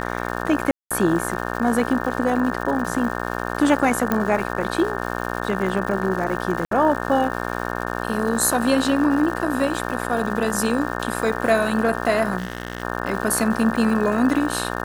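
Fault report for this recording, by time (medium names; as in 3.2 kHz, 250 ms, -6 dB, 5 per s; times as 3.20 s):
buzz 60 Hz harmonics 30 -27 dBFS
crackle 300 per s -30 dBFS
0.71–0.91 s: dropout 196 ms
4.12 s: pop -7 dBFS
6.65–6.71 s: dropout 63 ms
12.38–12.83 s: clipped -21 dBFS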